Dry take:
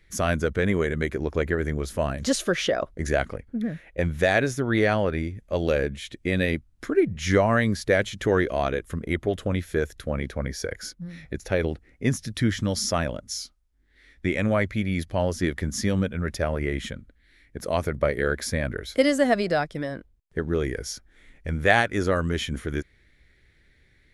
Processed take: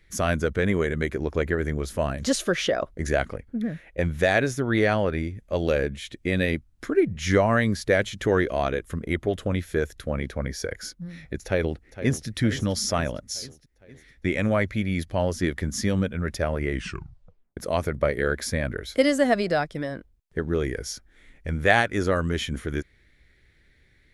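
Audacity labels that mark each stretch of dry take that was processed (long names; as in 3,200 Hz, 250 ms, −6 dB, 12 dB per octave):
11.450000	12.270000	delay throw 460 ms, feedback 60%, level −13 dB
16.720000	16.720000	tape stop 0.85 s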